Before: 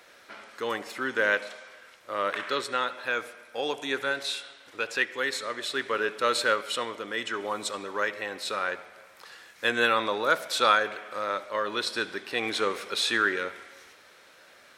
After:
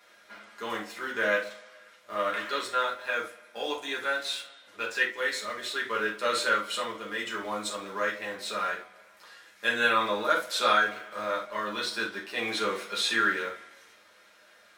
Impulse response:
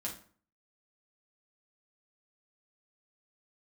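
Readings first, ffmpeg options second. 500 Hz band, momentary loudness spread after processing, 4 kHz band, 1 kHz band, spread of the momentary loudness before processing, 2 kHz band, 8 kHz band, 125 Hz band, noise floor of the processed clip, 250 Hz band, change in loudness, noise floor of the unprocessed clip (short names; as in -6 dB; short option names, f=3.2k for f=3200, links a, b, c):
-2.0 dB, 11 LU, -1.5 dB, -0.5 dB, 12 LU, -0.5 dB, -1.0 dB, -1.5 dB, -58 dBFS, -1.5 dB, -1.0 dB, -55 dBFS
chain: -filter_complex "[0:a]lowshelf=f=340:g=-6.5,asplit=2[a][b];[b]aeval=exprs='val(0)*gte(abs(val(0)),0.0158)':c=same,volume=-9.5dB[c];[a][c]amix=inputs=2:normalize=0[d];[1:a]atrim=start_sample=2205,atrim=end_sample=3969[e];[d][e]afir=irnorm=-1:irlink=0,volume=-3dB"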